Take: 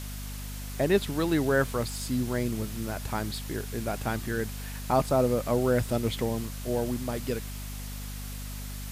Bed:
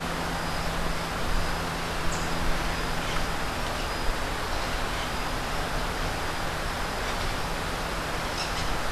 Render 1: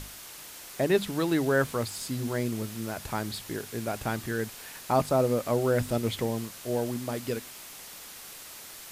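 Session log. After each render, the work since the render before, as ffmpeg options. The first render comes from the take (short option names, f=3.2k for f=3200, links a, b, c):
-af "bandreject=f=50:t=h:w=6,bandreject=f=100:t=h:w=6,bandreject=f=150:t=h:w=6,bandreject=f=200:t=h:w=6,bandreject=f=250:t=h:w=6"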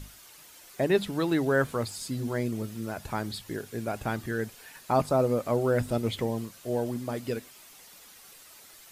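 -af "afftdn=nr=9:nf=-45"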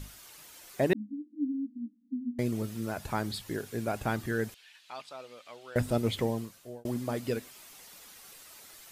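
-filter_complex "[0:a]asettb=1/sr,asplit=3[a][b][c];[a]atrim=end=0.934[d];[b]atrim=start=0.93:end=2.39,asetpts=PTS-STARTPTS,afade=t=in:d=0.004:c=qsin,afade=t=out:st=1.456:d=0.004:c=qsin,asuperpass=centerf=250:order=20:qfactor=2.8[e];[c]atrim=start=2.386[f];[d][e]acrossfade=d=0.004:c1=hsin:c2=qsin[g];[g][f]acrossfade=d=0.004:c1=qsin:c2=hsin,asettb=1/sr,asplit=3[h][i][j];[h]atrim=end=4.544[k];[i]atrim=start=4.54:end=5.76,asetpts=PTS-STARTPTS,afade=t=in:d=0.004:c=qsin,afade=t=out:st=1.216:d=0.004:c=qsin,bandpass=f=3.2k:t=q:w=2.2[l];[j]atrim=start=5.756[m];[k][l]acrossfade=d=0.004:c1=hsin:c2=qsin[n];[n][m]acrossfade=d=0.004:c1=qsin:c2=hsin,asplit=2[o][p];[o]atrim=end=6.85,asetpts=PTS-STARTPTS,afade=t=out:st=6.26:d=0.59[q];[p]atrim=start=6.85,asetpts=PTS-STARTPTS,afade=t=in:d=0.004:c=hsin[r];[q][r]concat=n=2:v=0:a=1"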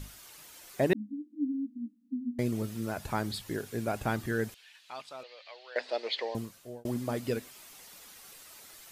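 -filter_complex "[0:a]asettb=1/sr,asplit=3[a][b][c];[a]atrim=end=5.234[d];[b]atrim=start=5.23:end=6.35,asetpts=PTS-STARTPTS,afade=t=in:d=0.004:c=qsin,afade=t=out:st=1.116:d=0.004:c=qsin,highpass=f=490:w=0.5412,highpass=f=490:w=1.3066,equalizer=f=1.3k:t=q:w=4:g=-8,equalizer=f=1.8k:t=q:w=4:g=6,equalizer=f=2.6k:t=q:w=4:g=3,equalizer=f=4.4k:t=q:w=4:g=10,lowpass=f=5k:w=0.5412,lowpass=f=5k:w=1.3066[e];[c]atrim=start=6.346[f];[d][e]acrossfade=d=0.004:c1=hsin:c2=qsin[g];[g][f]acrossfade=d=0.004:c1=qsin:c2=hsin"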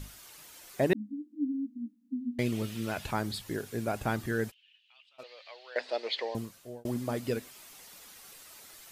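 -filter_complex "[0:a]asettb=1/sr,asplit=3[a][b][c];[a]atrim=end=2.164[d];[b]atrim=start=2.16:end=3.11,asetpts=PTS-STARTPTS,afade=t=in:d=0.004:c=qsin,afade=t=out:st=0.946:d=0.004:c=qsin,equalizer=f=2.9k:t=o:w=1.2:g=10[e];[c]atrim=start=3.106[f];[d][e]acrossfade=d=0.004:c1=hsin:c2=qsin[g];[g][f]acrossfade=d=0.004:c1=qsin:c2=hsin,asplit=3[h][i][j];[h]afade=t=out:st=4.5:d=0.02[k];[i]bandpass=f=2.9k:t=q:w=8.5,afade=t=in:st=4.5:d=0.02,afade=t=out:st=5.18:d=0.02[l];[j]afade=t=in:st=5.18:d=0.02[m];[k][l][m]amix=inputs=3:normalize=0"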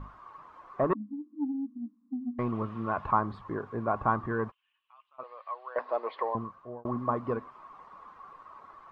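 -af "asoftclip=type=tanh:threshold=-21.5dB,lowpass=f=1.1k:t=q:w=13"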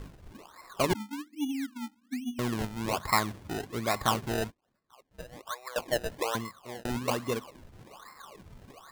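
-af "acrusher=samples=27:mix=1:aa=0.000001:lfo=1:lforange=27:lforate=1.2"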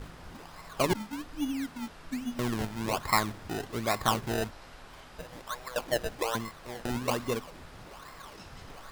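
-filter_complex "[1:a]volume=-20.5dB[a];[0:a][a]amix=inputs=2:normalize=0"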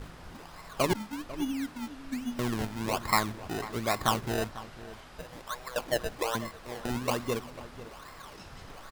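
-filter_complex "[0:a]asplit=2[a][b];[b]adelay=495.6,volume=-15dB,highshelf=f=4k:g=-11.2[c];[a][c]amix=inputs=2:normalize=0"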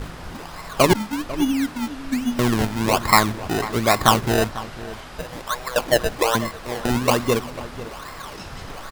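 -af "volume=11.5dB,alimiter=limit=-2dB:level=0:latency=1"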